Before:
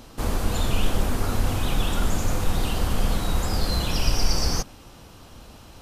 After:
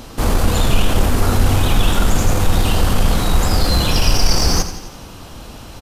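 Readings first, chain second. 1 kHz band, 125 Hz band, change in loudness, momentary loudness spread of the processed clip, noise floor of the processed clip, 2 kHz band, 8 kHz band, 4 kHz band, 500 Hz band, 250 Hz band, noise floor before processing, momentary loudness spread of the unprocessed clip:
+9.0 dB, +9.5 dB, +9.0 dB, 20 LU, −36 dBFS, +9.0 dB, +9.0 dB, +9.0 dB, +9.0 dB, +8.5 dB, −47 dBFS, 3 LU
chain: in parallel at −4.5 dB: hard clipping −23.5 dBFS, distortion −7 dB
on the sum: repeating echo 85 ms, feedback 57%, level −11.5 dB
level +6 dB

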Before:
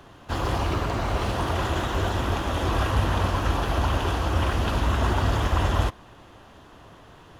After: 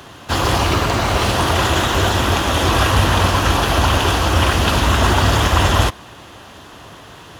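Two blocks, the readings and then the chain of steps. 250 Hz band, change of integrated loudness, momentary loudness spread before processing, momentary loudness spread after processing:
+8.5 dB, +9.5 dB, 3 LU, 3 LU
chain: high-pass filter 56 Hz
high-shelf EQ 2,100 Hz +8.5 dB
level +8.5 dB

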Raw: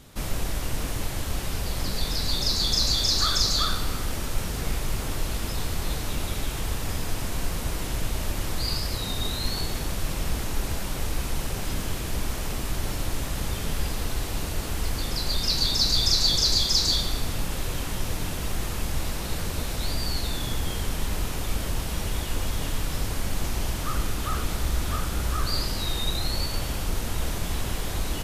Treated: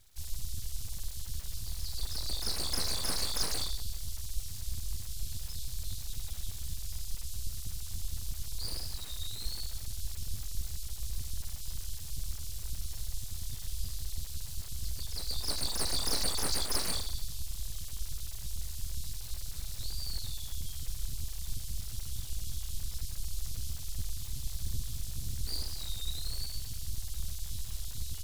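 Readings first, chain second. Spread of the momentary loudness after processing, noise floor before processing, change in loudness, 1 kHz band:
10 LU, −31 dBFS, −10.5 dB, −15.5 dB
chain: inverse Chebyshev band-stop filter 250–1,100 Hz, stop band 70 dB
full-wave rectification
level −6 dB

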